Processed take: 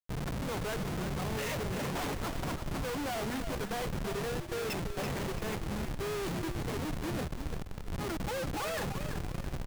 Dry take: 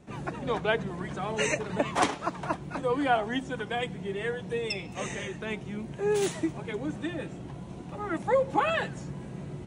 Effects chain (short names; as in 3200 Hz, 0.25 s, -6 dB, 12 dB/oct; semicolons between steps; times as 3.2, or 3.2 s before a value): 4.27–4.77 low shelf 290 Hz -9 dB; Schmitt trigger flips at -34 dBFS; on a send: frequency-shifting echo 0.337 s, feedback 36%, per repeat -54 Hz, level -8.5 dB; on the sum: gain -4 dB